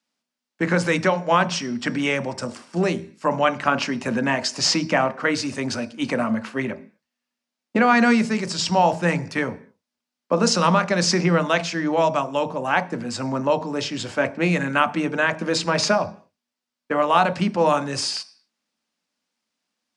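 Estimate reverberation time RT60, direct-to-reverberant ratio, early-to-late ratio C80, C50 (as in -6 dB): 0.45 s, 9.0 dB, 21.5 dB, 17.0 dB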